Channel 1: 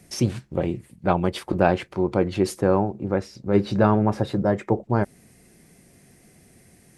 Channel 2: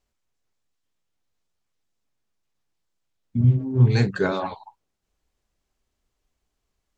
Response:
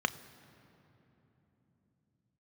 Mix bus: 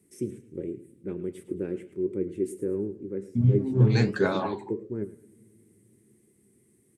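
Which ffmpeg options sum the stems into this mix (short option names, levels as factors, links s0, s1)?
-filter_complex "[0:a]firequalizer=gain_entry='entry(110,0);entry(400,10);entry(700,-26);entry(2000,-2);entry(4400,-18);entry(8000,7);entry(12000,3)':delay=0.05:min_phase=1,volume=0.316,asplit=3[s0][s1][s2];[s1]volume=0.106[s3];[s2]volume=0.168[s4];[1:a]volume=1.26[s5];[2:a]atrim=start_sample=2205[s6];[s3][s6]afir=irnorm=-1:irlink=0[s7];[s4]aecho=0:1:108|216|324|432|540:1|0.35|0.122|0.0429|0.015[s8];[s0][s5][s7][s8]amix=inputs=4:normalize=0,highpass=74,flanger=delay=9.2:depth=6.5:regen=75:speed=1.4:shape=triangular"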